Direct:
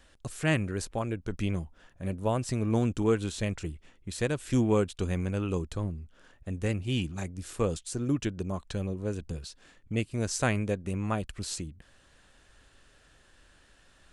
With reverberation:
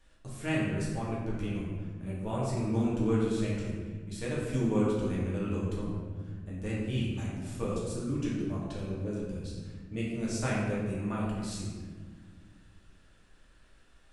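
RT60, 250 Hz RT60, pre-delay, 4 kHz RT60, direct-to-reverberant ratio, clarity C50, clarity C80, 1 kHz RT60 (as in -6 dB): 1.6 s, 2.7 s, 3 ms, 1.0 s, -7.0 dB, -0.5 dB, 2.0 dB, 1.4 s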